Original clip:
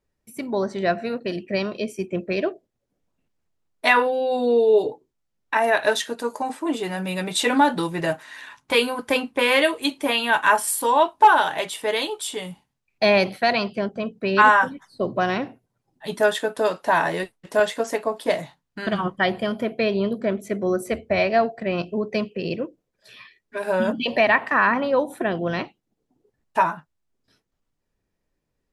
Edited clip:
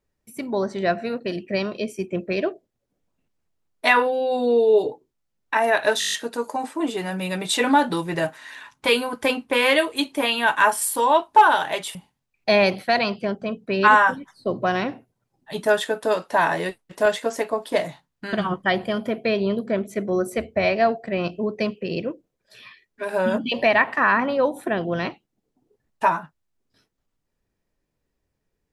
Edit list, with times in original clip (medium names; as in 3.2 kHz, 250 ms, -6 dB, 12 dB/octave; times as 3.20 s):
5.99 s: stutter 0.02 s, 8 plays
11.81–12.49 s: delete